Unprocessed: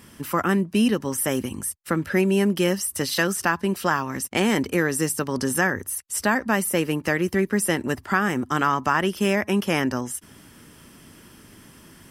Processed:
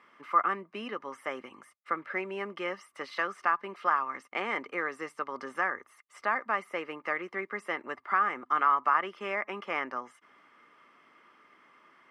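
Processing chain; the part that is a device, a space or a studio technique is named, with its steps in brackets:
tin-can telephone (band-pass filter 580–2,100 Hz; hollow resonant body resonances 1,200/2,100 Hz, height 14 dB, ringing for 35 ms)
level −7 dB

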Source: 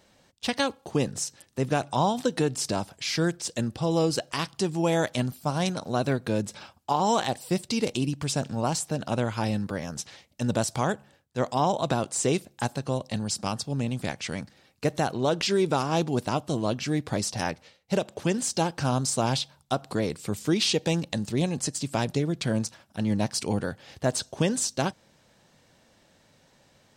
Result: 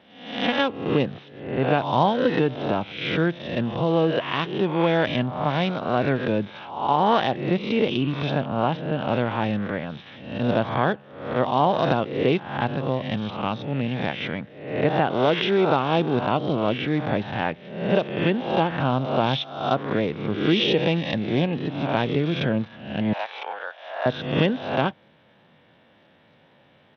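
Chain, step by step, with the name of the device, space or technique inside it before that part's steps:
peak hold with a rise ahead of every peak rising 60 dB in 0.70 s
0:23.13–0:24.06: high-pass filter 680 Hz 24 dB per octave
Bluetooth headset (high-pass filter 110 Hz 12 dB per octave; downsampling to 8,000 Hz; level +3 dB; SBC 64 kbit/s 32,000 Hz)

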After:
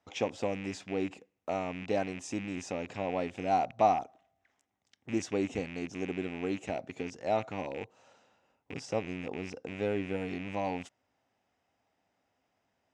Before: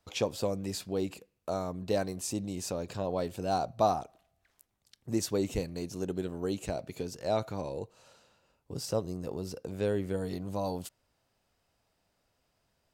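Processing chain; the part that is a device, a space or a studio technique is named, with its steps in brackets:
car door speaker with a rattle (loose part that buzzes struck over −39 dBFS, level −31 dBFS; loudspeaker in its box 100–6,700 Hz, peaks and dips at 140 Hz −5 dB, 270 Hz +6 dB, 780 Hz +7 dB, 2,000 Hz +5 dB, 4,400 Hz −10 dB)
level −2.5 dB

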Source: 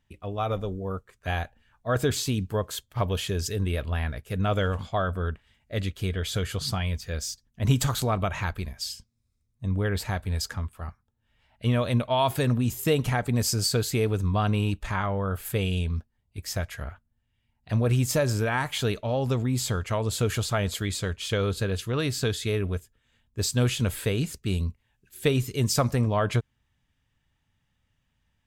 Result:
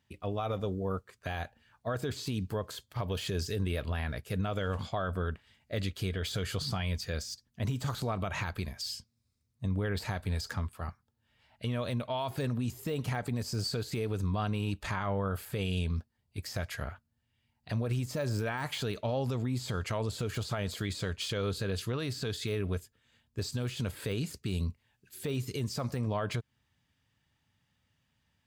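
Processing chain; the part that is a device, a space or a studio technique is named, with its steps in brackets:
broadcast voice chain (high-pass filter 82 Hz 12 dB per octave; de-essing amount 85%; downward compressor, threshold −27 dBFS, peak gain reduction 10.5 dB; parametric band 4,600 Hz +5.5 dB 0.38 octaves; brickwall limiter −24 dBFS, peak gain reduction 7 dB)

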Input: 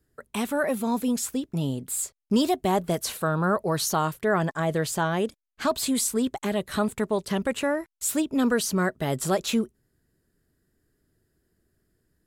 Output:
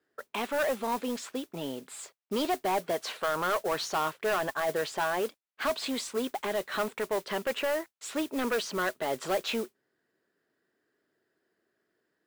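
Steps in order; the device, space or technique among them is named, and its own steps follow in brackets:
carbon microphone (band-pass filter 460–3,300 Hz; soft clipping −25.5 dBFS, distortion −9 dB; noise that follows the level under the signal 16 dB)
level +2.5 dB

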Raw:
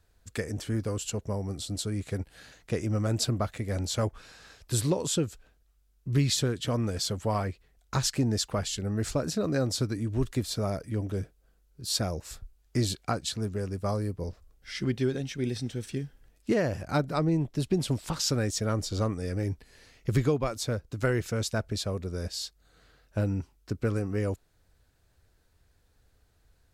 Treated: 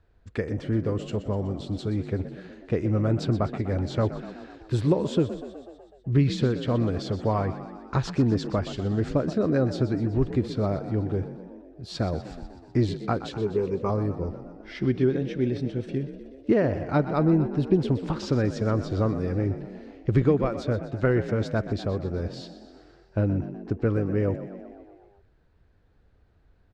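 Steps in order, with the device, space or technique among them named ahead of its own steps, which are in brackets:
0:13.31–0:13.90: EQ curve with evenly spaced ripples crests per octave 0.74, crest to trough 13 dB
echo with shifted repeats 124 ms, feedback 64%, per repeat +43 Hz, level −13 dB
phone in a pocket (low-pass filter 3,700 Hz 12 dB per octave; parametric band 340 Hz +3 dB 0.77 octaves; high-shelf EQ 2,500 Hz −9 dB)
level +3.5 dB

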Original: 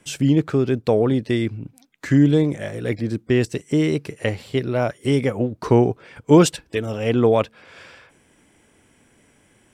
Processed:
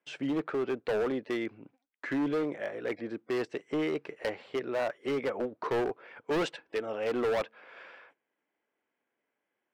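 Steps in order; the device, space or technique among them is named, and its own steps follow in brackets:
walkie-talkie (band-pass filter 450–2,200 Hz; hard clipping −22.5 dBFS, distortion −7 dB; noise gate −55 dBFS, range −18 dB)
level −3.5 dB

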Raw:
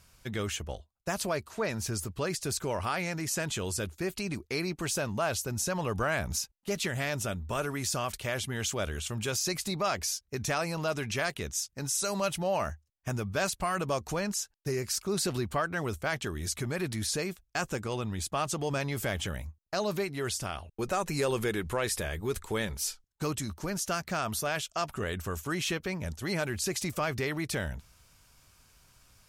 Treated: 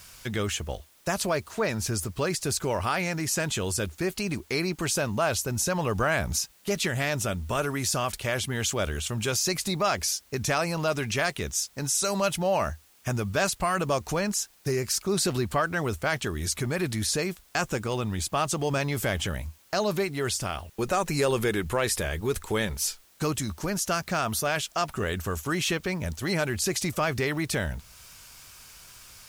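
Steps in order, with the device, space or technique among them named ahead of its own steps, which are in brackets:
noise-reduction cassette on a plain deck (one half of a high-frequency compander encoder only; tape wow and flutter 23 cents; white noise bed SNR 31 dB)
level +4.5 dB

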